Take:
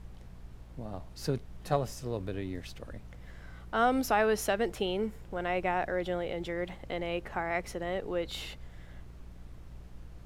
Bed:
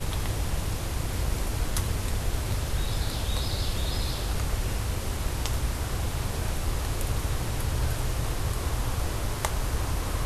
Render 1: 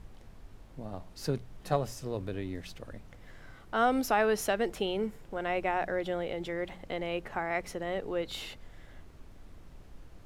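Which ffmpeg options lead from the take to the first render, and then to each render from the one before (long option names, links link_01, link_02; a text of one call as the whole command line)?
ffmpeg -i in.wav -af "bandreject=frequency=60:width_type=h:width=4,bandreject=frequency=120:width_type=h:width=4,bandreject=frequency=180:width_type=h:width=4" out.wav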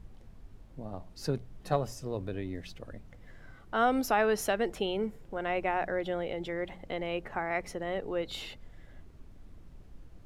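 ffmpeg -i in.wav -af "afftdn=noise_reduction=6:noise_floor=-53" out.wav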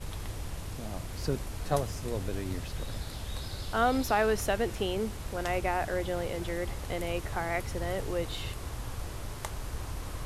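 ffmpeg -i in.wav -i bed.wav -filter_complex "[1:a]volume=-9.5dB[link_01];[0:a][link_01]amix=inputs=2:normalize=0" out.wav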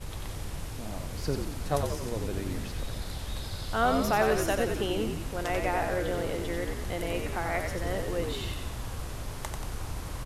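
ffmpeg -i in.wav -filter_complex "[0:a]asplit=8[link_01][link_02][link_03][link_04][link_05][link_06][link_07][link_08];[link_02]adelay=91,afreqshift=-55,volume=-5dB[link_09];[link_03]adelay=182,afreqshift=-110,volume=-10dB[link_10];[link_04]adelay=273,afreqshift=-165,volume=-15.1dB[link_11];[link_05]adelay=364,afreqshift=-220,volume=-20.1dB[link_12];[link_06]adelay=455,afreqshift=-275,volume=-25.1dB[link_13];[link_07]adelay=546,afreqshift=-330,volume=-30.2dB[link_14];[link_08]adelay=637,afreqshift=-385,volume=-35.2dB[link_15];[link_01][link_09][link_10][link_11][link_12][link_13][link_14][link_15]amix=inputs=8:normalize=0" out.wav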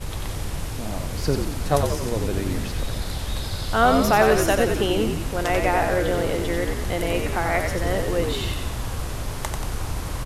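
ffmpeg -i in.wav -af "volume=8dB" out.wav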